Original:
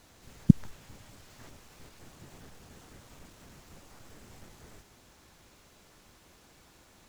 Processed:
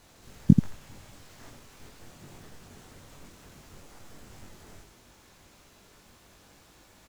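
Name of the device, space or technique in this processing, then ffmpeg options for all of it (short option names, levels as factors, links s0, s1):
slapback doubling: -filter_complex "[0:a]asplit=3[s0][s1][s2];[s1]adelay=21,volume=0.631[s3];[s2]adelay=85,volume=0.531[s4];[s0][s3][s4]amix=inputs=3:normalize=0"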